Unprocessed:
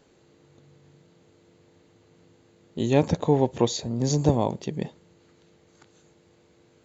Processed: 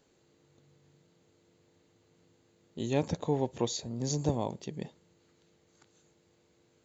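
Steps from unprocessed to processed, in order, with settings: high shelf 4600 Hz +6.5 dB; gain -9 dB

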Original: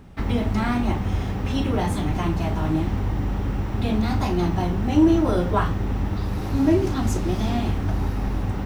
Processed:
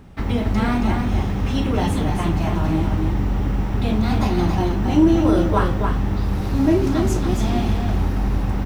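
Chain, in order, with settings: echo 0.275 s -5 dB; gain +1.5 dB

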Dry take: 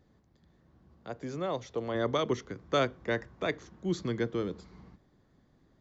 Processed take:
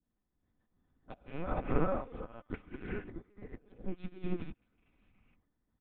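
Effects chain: rattling part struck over -47 dBFS, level -36 dBFS; dispersion highs, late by 45 ms, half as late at 680 Hz; dynamic EQ 1400 Hz, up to +7 dB, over -50 dBFS, Q 2.9; random-step tremolo, depth 70%; flipped gate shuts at -28 dBFS, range -39 dB; reverb, pre-delay 3 ms, DRR -6.5 dB; LPC vocoder at 8 kHz pitch kept; comb 4 ms, depth 31%; treble ducked by the level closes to 1300 Hz, closed at -31.5 dBFS; bell 490 Hz -7 dB 0.42 oct; upward expander 2.5:1, over -49 dBFS; gain +9.5 dB

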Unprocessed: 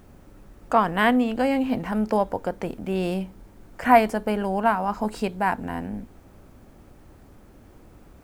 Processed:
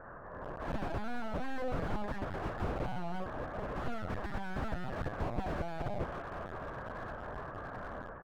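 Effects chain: spectral limiter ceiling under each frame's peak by 20 dB; Chebyshev band-pass 160–890 Hz, order 5; harmonic-percussive split percussive -6 dB; AGC gain up to 7.5 dB; limiter -13 dBFS, peak gain reduction 10 dB; compressor 3:1, threshold -30 dBFS, peak gain reduction 9.5 dB; added harmonics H 2 -19 dB, 5 -10 dB, 6 -13 dB, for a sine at -17.5 dBFS; pitch shift +11.5 st; air absorption 350 m; feedback echo 0.73 s, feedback 52%, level -20.5 dB; LPC vocoder at 8 kHz pitch kept; slew limiter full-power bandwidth 13 Hz; gain -1.5 dB

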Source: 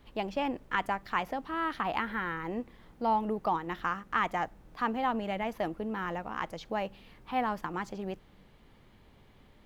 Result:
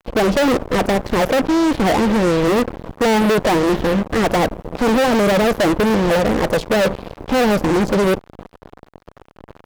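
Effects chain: resonant low shelf 800 Hz +13.5 dB, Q 3; fuzz box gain 33 dB, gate -38 dBFS

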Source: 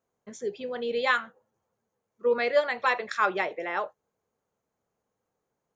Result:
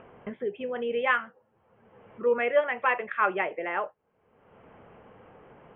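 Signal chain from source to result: upward compressor, threshold -28 dBFS; steep low-pass 3100 Hz 96 dB/oct

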